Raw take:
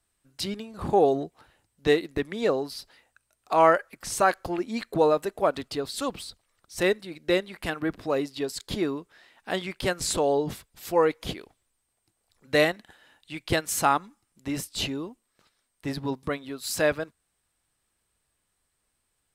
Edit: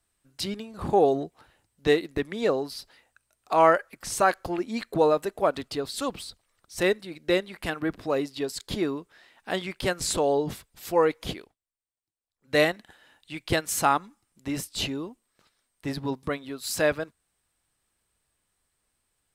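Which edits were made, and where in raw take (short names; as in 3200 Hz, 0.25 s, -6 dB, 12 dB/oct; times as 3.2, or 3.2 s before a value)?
11.37–12.58 dip -22.5 dB, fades 0.19 s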